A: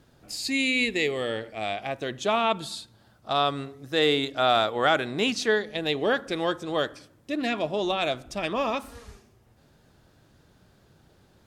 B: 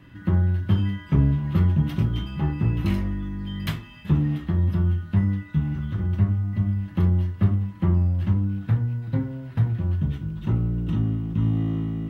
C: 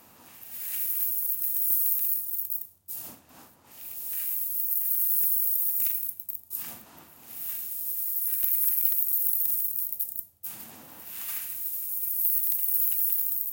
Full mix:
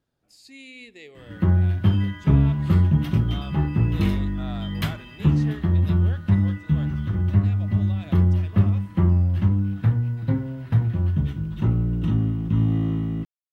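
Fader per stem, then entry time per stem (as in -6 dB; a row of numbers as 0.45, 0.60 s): -19.0 dB, +2.0 dB, off; 0.00 s, 1.15 s, off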